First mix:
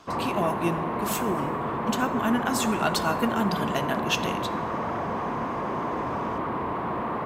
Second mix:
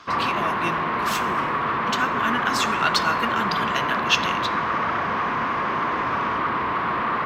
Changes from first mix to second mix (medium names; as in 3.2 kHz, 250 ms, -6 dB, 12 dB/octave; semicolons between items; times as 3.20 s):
speech -5.5 dB; master: add high-order bell 2.6 kHz +12.5 dB 2.7 oct